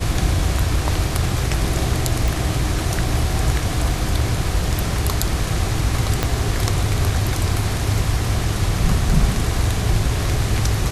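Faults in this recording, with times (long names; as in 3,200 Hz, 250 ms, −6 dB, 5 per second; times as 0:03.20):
0:02.28: click
0:06.23: click −4 dBFS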